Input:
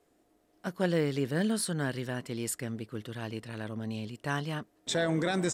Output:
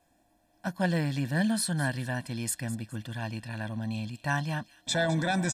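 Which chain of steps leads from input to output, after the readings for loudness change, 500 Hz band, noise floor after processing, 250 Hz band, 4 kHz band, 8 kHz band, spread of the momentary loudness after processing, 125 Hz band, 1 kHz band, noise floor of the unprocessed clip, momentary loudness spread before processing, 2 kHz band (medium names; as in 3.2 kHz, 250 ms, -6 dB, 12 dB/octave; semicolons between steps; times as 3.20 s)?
+2.0 dB, -2.5 dB, -69 dBFS, +1.5 dB, +2.5 dB, +3.0 dB, 9 LU, +4.5 dB, +4.0 dB, -69 dBFS, 10 LU, +4.5 dB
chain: comb 1.2 ms, depth 93%; on a send: feedback echo behind a high-pass 208 ms, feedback 32%, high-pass 2.9 kHz, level -14 dB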